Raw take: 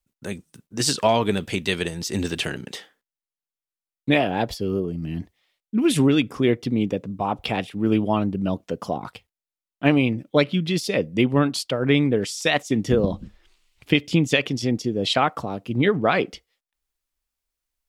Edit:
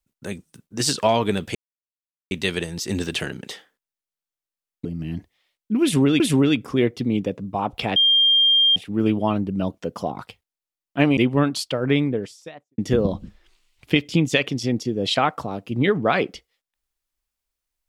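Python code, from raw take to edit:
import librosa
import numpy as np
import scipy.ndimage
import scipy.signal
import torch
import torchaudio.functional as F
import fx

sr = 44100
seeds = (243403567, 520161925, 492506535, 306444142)

y = fx.studio_fade_out(x, sr, start_s=11.74, length_s=1.03)
y = fx.edit(y, sr, fx.insert_silence(at_s=1.55, length_s=0.76),
    fx.cut(start_s=4.09, length_s=0.79),
    fx.repeat(start_s=5.86, length_s=0.37, count=2),
    fx.insert_tone(at_s=7.62, length_s=0.8, hz=3200.0, db=-13.0),
    fx.cut(start_s=10.03, length_s=1.13), tone=tone)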